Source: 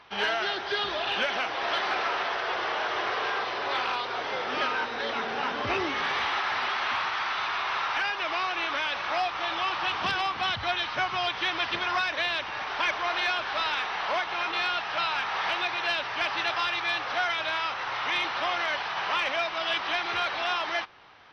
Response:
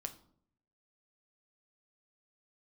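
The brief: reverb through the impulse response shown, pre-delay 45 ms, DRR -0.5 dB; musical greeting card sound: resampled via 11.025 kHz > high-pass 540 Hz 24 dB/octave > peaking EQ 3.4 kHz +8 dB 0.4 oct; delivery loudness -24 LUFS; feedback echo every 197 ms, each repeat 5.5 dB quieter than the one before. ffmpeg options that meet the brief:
-filter_complex "[0:a]aecho=1:1:197|394|591|788|985|1182|1379:0.531|0.281|0.149|0.079|0.0419|0.0222|0.0118,asplit=2[s0][s1];[1:a]atrim=start_sample=2205,adelay=45[s2];[s1][s2]afir=irnorm=-1:irlink=0,volume=1.41[s3];[s0][s3]amix=inputs=2:normalize=0,aresample=11025,aresample=44100,highpass=f=540:w=0.5412,highpass=f=540:w=1.3066,equalizer=f=3400:t=o:w=0.4:g=8,volume=0.708"

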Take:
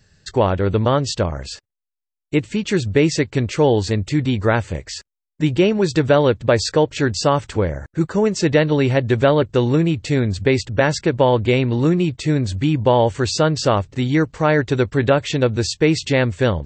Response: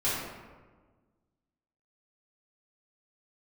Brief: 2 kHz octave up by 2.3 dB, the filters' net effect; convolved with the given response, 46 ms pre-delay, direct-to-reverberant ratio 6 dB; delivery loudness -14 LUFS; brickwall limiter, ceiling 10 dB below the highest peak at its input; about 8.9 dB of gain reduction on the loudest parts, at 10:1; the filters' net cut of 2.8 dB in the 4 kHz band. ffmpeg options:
-filter_complex "[0:a]equalizer=f=2000:t=o:g=4,equalizer=f=4000:t=o:g=-5,acompressor=threshold=0.112:ratio=10,alimiter=limit=0.112:level=0:latency=1,asplit=2[s0][s1];[1:a]atrim=start_sample=2205,adelay=46[s2];[s1][s2]afir=irnorm=-1:irlink=0,volume=0.158[s3];[s0][s3]amix=inputs=2:normalize=0,volume=4.73"

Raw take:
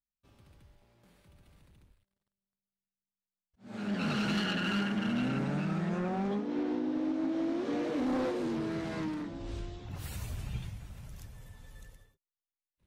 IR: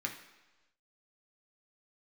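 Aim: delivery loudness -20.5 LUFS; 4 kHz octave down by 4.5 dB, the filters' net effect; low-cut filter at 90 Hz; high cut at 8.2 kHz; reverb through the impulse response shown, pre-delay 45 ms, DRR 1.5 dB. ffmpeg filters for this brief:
-filter_complex "[0:a]highpass=90,lowpass=8200,equalizer=f=4000:t=o:g=-7,asplit=2[s0][s1];[1:a]atrim=start_sample=2205,adelay=45[s2];[s1][s2]afir=irnorm=-1:irlink=0,volume=0.631[s3];[s0][s3]amix=inputs=2:normalize=0,volume=3.76"

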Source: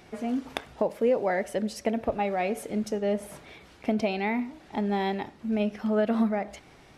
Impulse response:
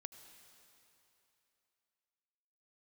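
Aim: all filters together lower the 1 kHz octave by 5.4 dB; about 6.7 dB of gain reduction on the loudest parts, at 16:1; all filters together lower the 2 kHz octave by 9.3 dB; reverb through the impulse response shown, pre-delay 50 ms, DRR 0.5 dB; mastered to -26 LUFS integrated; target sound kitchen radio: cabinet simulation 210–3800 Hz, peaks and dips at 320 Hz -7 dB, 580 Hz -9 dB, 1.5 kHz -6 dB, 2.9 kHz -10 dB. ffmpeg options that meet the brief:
-filter_complex "[0:a]equalizer=f=1000:t=o:g=-4,equalizer=f=2000:t=o:g=-6,acompressor=threshold=0.0501:ratio=16,asplit=2[s0][s1];[1:a]atrim=start_sample=2205,adelay=50[s2];[s1][s2]afir=irnorm=-1:irlink=0,volume=1.78[s3];[s0][s3]amix=inputs=2:normalize=0,highpass=210,equalizer=f=320:t=q:w=4:g=-7,equalizer=f=580:t=q:w=4:g=-9,equalizer=f=1500:t=q:w=4:g=-6,equalizer=f=2900:t=q:w=4:g=-10,lowpass=f=3800:w=0.5412,lowpass=f=3800:w=1.3066,volume=2.51"

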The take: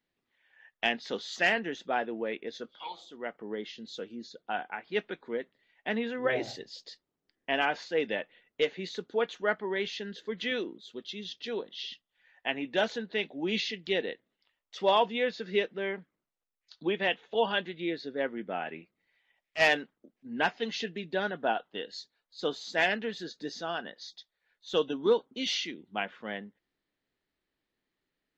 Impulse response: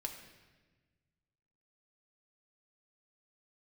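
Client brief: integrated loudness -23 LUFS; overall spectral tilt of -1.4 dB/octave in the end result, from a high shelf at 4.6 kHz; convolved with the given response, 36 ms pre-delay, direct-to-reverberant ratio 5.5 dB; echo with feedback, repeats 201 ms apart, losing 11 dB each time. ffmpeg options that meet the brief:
-filter_complex "[0:a]highshelf=f=4600:g=-3.5,aecho=1:1:201|402|603:0.282|0.0789|0.0221,asplit=2[s0][s1];[1:a]atrim=start_sample=2205,adelay=36[s2];[s1][s2]afir=irnorm=-1:irlink=0,volume=0.596[s3];[s0][s3]amix=inputs=2:normalize=0,volume=2.66"

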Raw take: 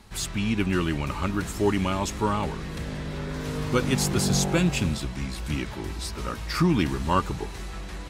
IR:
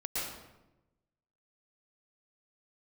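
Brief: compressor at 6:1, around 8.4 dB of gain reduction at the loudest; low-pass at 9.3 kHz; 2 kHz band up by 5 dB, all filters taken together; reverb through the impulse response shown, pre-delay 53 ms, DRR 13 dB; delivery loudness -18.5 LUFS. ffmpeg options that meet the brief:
-filter_complex "[0:a]lowpass=9300,equalizer=f=2000:t=o:g=6.5,acompressor=threshold=0.0501:ratio=6,asplit=2[s0][s1];[1:a]atrim=start_sample=2205,adelay=53[s2];[s1][s2]afir=irnorm=-1:irlink=0,volume=0.133[s3];[s0][s3]amix=inputs=2:normalize=0,volume=4.22"

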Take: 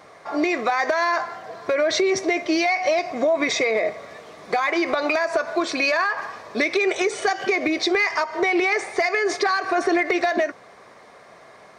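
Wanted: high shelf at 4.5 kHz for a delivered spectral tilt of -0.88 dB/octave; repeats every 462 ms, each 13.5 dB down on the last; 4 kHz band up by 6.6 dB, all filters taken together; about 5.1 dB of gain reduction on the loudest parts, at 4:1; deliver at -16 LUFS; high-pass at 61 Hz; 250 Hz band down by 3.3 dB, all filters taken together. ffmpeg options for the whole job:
-af "highpass=61,equalizer=f=250:t=o:g=-5.5,equalizer=f=4000:t=o:g=5.5,highshelf=f=4500:g=4,acompressor=threshold=0.0891:ratio=4,aecho=1:1:462|924:0.211|0.0444,volume=2.51"

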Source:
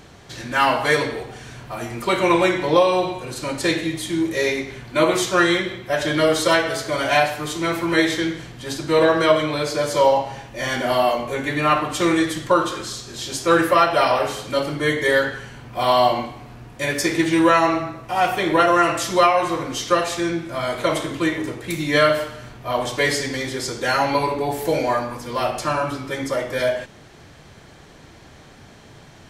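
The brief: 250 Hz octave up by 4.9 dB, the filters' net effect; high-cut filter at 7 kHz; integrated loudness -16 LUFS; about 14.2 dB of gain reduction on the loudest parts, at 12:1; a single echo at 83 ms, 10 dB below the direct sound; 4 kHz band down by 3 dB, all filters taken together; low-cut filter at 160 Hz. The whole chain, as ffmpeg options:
-af "highpass=160,lowpass=7000,equalizer=f=250:t=o:g=8,equalizer=f=4000:t=o:g=-3.5,acompressor=threshold=0.0631:ratio=12,aecho=1:1:83:0.316,volume=3.98"

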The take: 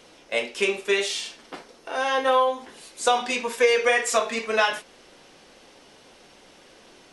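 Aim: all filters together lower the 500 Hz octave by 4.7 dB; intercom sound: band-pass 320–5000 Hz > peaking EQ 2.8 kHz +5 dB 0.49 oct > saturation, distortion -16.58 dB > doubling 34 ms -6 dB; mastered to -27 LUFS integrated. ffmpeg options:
-filter_complex "[0:a]highpass=320,lowpass=5000,equalizer=f=500:t=o:g=-4.5,equalizer=f=2800:t=o:w=0.49:g=5,asoftclip=threshold=0.168,asplit=2[s0][s1];[s1]adelay=34,volume=0.501[s2];[s0][s2]amix=inputs=2:normalize=0,volume=0.75"

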